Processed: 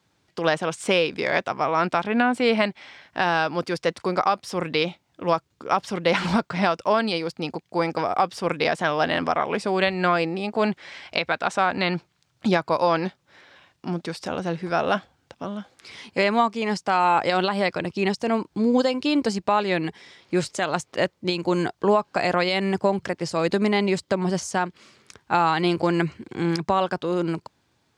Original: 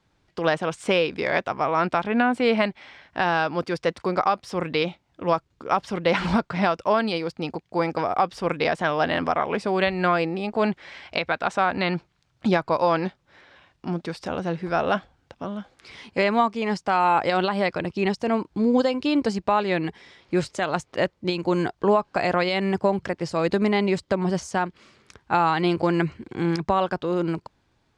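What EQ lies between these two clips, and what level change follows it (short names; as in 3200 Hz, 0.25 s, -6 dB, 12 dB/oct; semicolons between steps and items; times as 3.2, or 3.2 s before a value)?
HPF 90 Hz; high shelf 5000 Hz +8.5 dB; 0.0 dB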